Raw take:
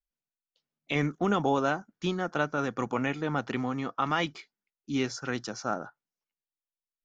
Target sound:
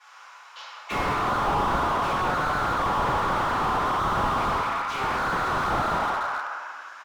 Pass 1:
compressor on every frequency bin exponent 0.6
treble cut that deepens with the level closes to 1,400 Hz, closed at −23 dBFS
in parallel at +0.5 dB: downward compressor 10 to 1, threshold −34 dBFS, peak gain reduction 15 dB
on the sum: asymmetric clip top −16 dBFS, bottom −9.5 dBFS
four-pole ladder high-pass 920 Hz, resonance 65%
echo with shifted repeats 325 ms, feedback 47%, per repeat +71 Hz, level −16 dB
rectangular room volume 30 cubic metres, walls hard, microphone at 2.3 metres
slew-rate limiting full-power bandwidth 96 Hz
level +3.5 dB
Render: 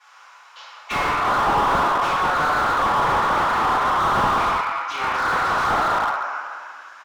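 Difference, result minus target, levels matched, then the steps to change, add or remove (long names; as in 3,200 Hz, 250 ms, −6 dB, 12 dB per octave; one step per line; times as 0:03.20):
slew-rate limiting: distortion −6 dB
change: slew-rate limiting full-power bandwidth 47 Hz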